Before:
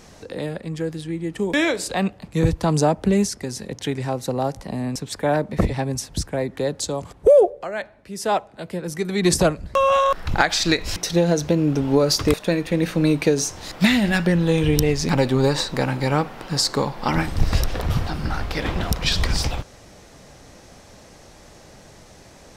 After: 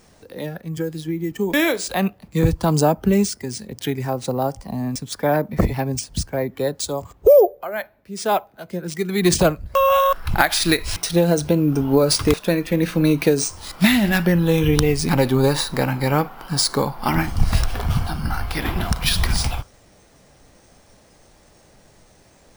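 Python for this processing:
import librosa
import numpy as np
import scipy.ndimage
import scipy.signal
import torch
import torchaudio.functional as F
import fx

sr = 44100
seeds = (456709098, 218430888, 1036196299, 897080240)

y = fx.noise_reduce_blind(x, sr, reduce_db=8)
y = np.repeat(y[::3], 3)[:len(y)]
y = fx.band_squash(y, sr, depth_pct=100, at=(0.77, 1.32))
y = F.gain(torch.from_numpy(y), 1.5).numpy()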